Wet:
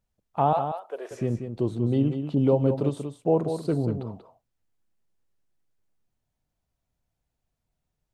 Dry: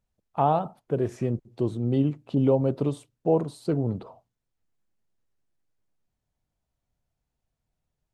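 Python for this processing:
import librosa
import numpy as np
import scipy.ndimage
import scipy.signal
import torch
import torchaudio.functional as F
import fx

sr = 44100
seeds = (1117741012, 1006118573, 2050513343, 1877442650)

y = fx.highpass(x, sr, hz=540.0, slope=24, at=(0.53, 1.11))
y = y + 10.0 ** (-8.0 / 20.0) * np.pad(y, (int(187 * sr / 1000.0), 0))[:len(y)]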